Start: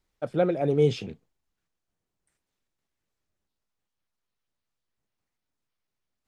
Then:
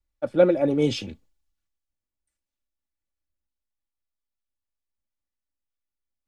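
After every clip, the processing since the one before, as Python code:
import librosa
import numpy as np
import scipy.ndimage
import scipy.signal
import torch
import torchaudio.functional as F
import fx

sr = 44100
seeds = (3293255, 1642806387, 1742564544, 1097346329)

y = x + 0.6 * np.pad(x, (int(3.5 * sr / 1000.0), 0))[:len(x)]
y = fx.band_widen(y, sr, depth_pct=40)
y = F.gain(torch.from_numpy(y), 2.5).numpy()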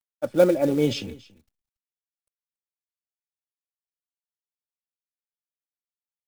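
y = fx.quant_companded(x, sr, bits=6)
y = y + 10.0 ** (-21.0 / 20.0) * np.pad(y, (int(280 * sr / 1000.0), 0))[:len(y)]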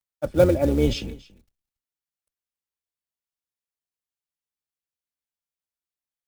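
y = fx.octave_divider(x, sr, octaves=2, level_db=0.0)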